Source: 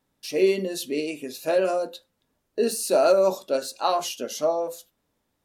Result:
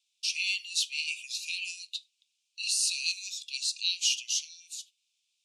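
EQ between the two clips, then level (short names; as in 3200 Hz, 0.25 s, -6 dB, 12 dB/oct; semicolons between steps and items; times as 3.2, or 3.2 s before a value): steep high-pass 2400 Hz 96 dB/oct; LPF 8100 Hz 24 dB/oct; +6.5 dB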